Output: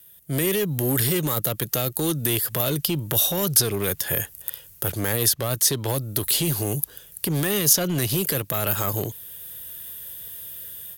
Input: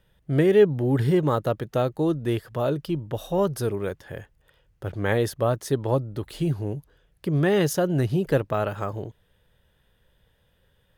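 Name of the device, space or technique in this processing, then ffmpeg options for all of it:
FM broadcast chain: -filter_complex "[0:a]highpass=68,dynaudnorm=f=260:g=3:m=4.47,acrossover=split=240|1500|5300[s0][s1][s2][s3];[s0]acompressor=threshold=0.0794:ratio=4[s4];[s1]acompressor=threshold=0.0794:ratio=4[s5];[s2]acompressor=threshold=0.0282:ratio=4[s6];[s3]acompressor=threshold=0.00251:ratio=4[s7];[s4][s5][s6][s7]amix=inputs=4:normalize=0,aemphasis=mode=production:type=75fm,alimiter=limit=0.2:level=0:latency=1:release=28,asoftclip=type=hard:threshold=0.133,lowpass=f=15000:w=0.5412,lowpass=f=15000:w=1.3066,aemphasis=mode=production:type=75fm,volume=0.891"

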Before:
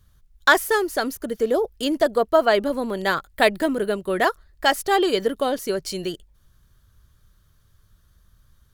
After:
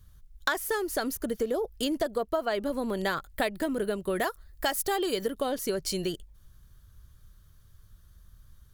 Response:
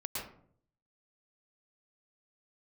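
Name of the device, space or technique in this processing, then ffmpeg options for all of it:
ASMR close-microphone chain: -filter_complex "[0:a]asettb=1/sr,asplit=3[s0][s1][s2];[s0]atrim=end=4.154[s3];[s1]atrim=start=4.15:end=5.3,asetpts=PTS-STARTPTS,afade=t=in:d=0.004:c=qsin,afade=t=out:st=1.146:d=0.004:c=qsin,highshelf=f=8700:g=9.5[s4];[s2]atrim=start=5.296[s5];[s3][s4]acrossfade=d=0.004:c1=hsin:c2=qsin[s6];[s6][s5]acrossfade=d=0.004:c1=qsin:c2=hsin,lowshelf=f=140:g=6.5,acompressor=threshold=0.0708:ratio=6,highshelf=f=7200:g=5,volume=0.75"

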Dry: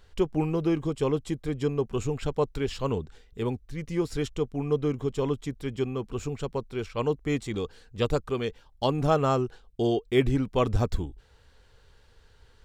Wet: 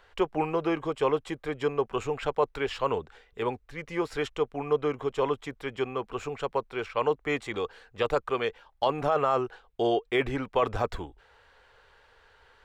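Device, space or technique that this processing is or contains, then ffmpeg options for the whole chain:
DJ mixer with the lows and highs turned down: -filter_complex "[0:a]acrossover=split=500 2800:gain=0.126 1 0.2[s0][s1][s2];[s0][s1][s2]amix=inputs=3:normalize=0,alimiter=limit=0.0794:level=0:latency=1:release=11,volume=2.51"

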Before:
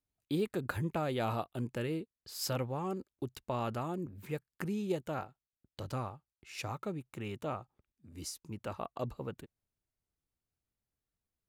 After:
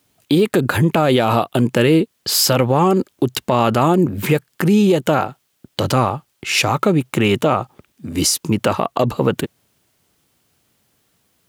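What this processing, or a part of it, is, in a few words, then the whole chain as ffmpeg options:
mastering chain: -af "equalizer=f=3100:t=o:w=0.29:g=3.5,acompressor=threshold=0.0112:ratio=2.5,asoftclip=type=tanh:threshold=0.0531,alimiter=level_in=50.1:limit=0.891:release=50:level=0:latency=1,highpass=130,volume=0.562"

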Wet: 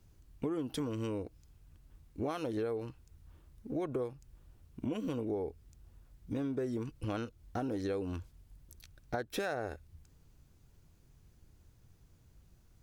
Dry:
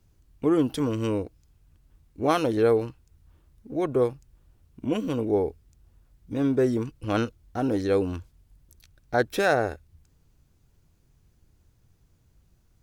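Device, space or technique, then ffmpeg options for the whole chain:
serial compression, peaks first: -af "acompressor=threshold=0.0355:ratio=6,acompressor=threshold=0.0126:ratio=1.5"

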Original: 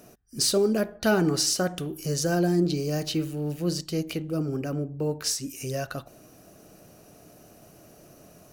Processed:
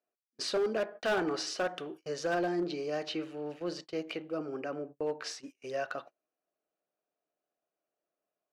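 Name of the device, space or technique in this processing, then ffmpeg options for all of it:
walkie-talkie: -af "highpass=500,lowpass=2700,asoftclip=type=hard:threshold=0.0531,agate=range=0.0224:threshold=0.00562:ratio=16:detection=peak"

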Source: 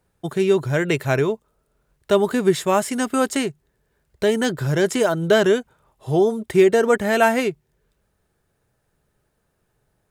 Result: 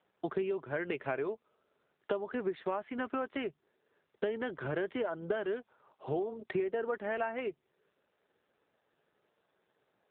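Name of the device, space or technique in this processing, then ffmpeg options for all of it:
voicemail: -filter_complex "[0:a]asettb=1/sr,asplit=3[s0][s1][s2];[s0]atrim=end=1.174[s3];[s1]atrim=start=1.17:end=2.58,asetpts=PTS-STARTPTS,afade=t=in:d=0.004:c=qsin,afade=t=out:st=1.406:d=0.004:c=qsin,highpass=80[s4];[s2]atrim=start=2.576[s5];[s3][s4]acrossfade=d=0.004:c1=hsin:c2=qsin[s6];[s6][s5]acrossfade=d=0.004:c1=qsin:c2=hsin,highpass=320,lowpass=2800,acompressor=threshold=0.0282:ratio=8" -ar 8000 -c:a libopencore_amrnb -b:a 7400

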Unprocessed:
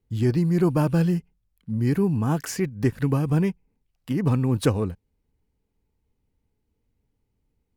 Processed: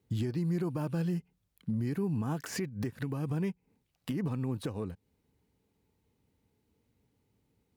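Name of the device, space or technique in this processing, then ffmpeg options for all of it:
broadcast voice chain: -af "highpass=98,deesser=0.75,acompressor=threshold=0.0251:ratio=4,equalizer=f=3800:t=o:w=0.29:g=2.5,alimiter=level_in=1.68:limit=0.0631:level=0:latency=1:release=209,volume=0.596,volume=1.58"

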